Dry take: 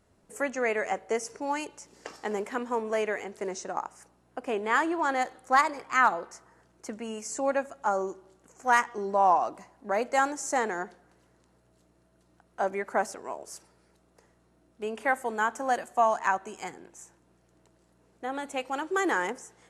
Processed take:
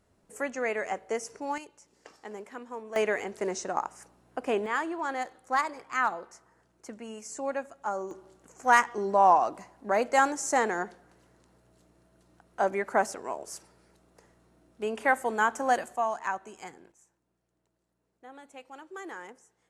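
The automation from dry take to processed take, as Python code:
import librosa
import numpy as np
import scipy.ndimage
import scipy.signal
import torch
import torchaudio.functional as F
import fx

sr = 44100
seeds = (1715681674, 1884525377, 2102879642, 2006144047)

y = fx.gain(x, sr, db=fx.steps((0.0, -2.5), (1.58, -10.0), (2.96, 2.5), (4.66, -5.0), (8.11, 2.0), (15.96, -5.5), (16.92, -14.5)))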